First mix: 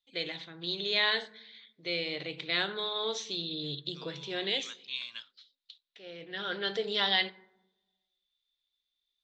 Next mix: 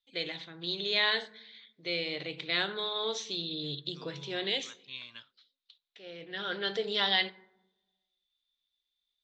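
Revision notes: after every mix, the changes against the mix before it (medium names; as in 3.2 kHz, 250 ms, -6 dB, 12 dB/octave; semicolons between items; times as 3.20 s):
second voice: add tilt EQ -3.5 dB/octave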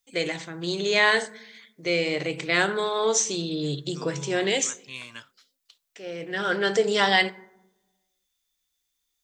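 master: remove four-pole ladder low-pass 4.1 kHz, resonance 70%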